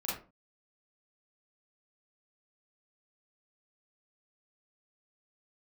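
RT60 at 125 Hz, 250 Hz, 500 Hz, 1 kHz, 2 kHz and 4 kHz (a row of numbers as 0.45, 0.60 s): 0.45, 0.45, 0.35, 0.30, 0.25, 0.20 s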